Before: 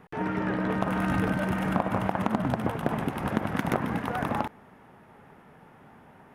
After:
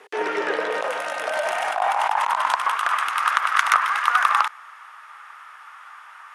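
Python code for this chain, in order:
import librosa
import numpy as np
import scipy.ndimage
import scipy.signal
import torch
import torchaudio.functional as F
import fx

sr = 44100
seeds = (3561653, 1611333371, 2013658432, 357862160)

y = fx.weighting(x, sr, curve='ITU-R 468')
y = fx.over_compress(y, sr, threshold_db=-34.0, ratio=-1.0, at=(0.61, 2.53))
y = fx.filter_sweep_highpass(y, sr, from_hz=410.0, to_hz=1200.0, start_s=0.39, end_s=2.88, q=5.4)
y = F.gain(torch.from_numpy(y), 4.5).numpy()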